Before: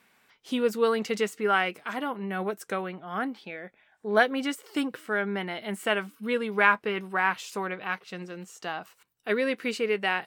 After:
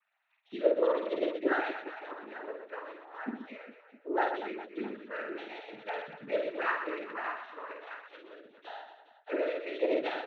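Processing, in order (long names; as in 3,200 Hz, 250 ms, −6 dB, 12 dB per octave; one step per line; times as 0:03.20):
three sine waves on the formant tracks
cochlear-implant simulation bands 12
reverse bouncing-ball delay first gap 50 ms, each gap 1.5×, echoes 5
level −8 dB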